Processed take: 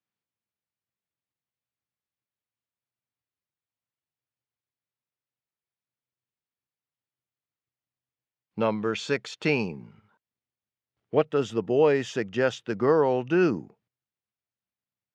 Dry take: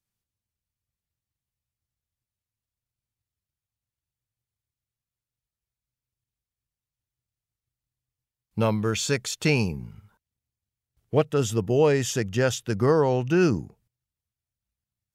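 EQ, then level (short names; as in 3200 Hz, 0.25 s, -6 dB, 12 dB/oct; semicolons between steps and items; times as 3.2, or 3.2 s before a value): BPF 220–3200 Hz; 0.0 dB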